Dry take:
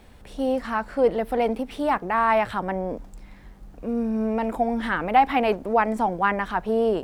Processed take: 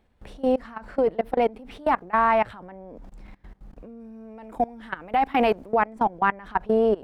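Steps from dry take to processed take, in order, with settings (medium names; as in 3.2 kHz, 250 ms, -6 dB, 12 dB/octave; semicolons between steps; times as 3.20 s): treble shelf 4.6 kHz -10 dB, from 4.00 s -2 dB, from 5.73 s -11.5 dB; level held to a coarse grid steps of 23 dB; wow and flutter 29 cents; trim +4 dB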